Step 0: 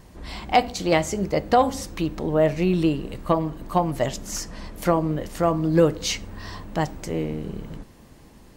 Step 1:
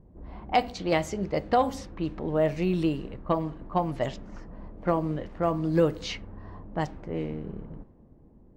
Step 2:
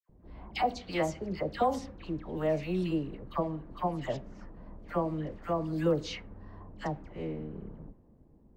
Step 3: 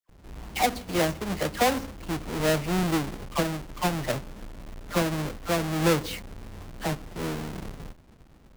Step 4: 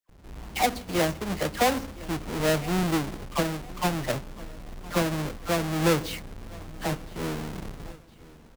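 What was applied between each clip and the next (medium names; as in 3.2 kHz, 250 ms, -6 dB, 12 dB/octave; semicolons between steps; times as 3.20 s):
dynamic bell 8.4 kHz, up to -5 dB, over -46 dBFS, Q 1; level-controlled noise filter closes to 460 Hz, open at -17.5 dBFS; trim -5 dB
phase dispersion lows, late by 94 ms, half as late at 1.4 kHz; trim -5 dB
square wave that keeps the level; trim +1.5 dB
feedback delay 1013 ms, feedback 43%, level -21 dB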